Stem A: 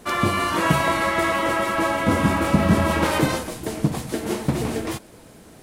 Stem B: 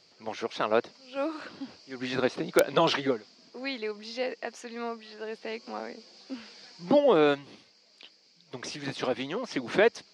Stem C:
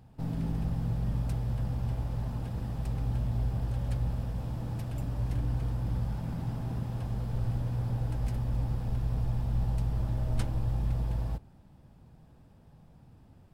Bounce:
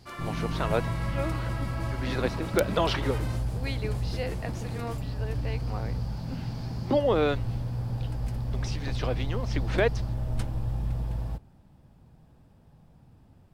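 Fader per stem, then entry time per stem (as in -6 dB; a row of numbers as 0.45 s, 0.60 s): -17.5 dB, -2.5 dB, 0.0 dB; 0.00 s, 0.00 s, 0.00 s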